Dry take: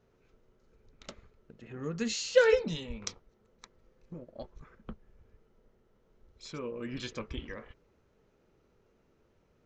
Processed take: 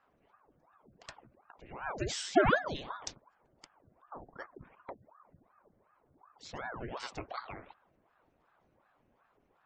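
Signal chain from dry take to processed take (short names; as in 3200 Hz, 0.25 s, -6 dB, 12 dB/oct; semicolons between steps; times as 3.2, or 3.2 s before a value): spectral gate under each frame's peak -30 dB strong; ring modulator with a swept carrier 670 Hz, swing 85%, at 2.7 Hz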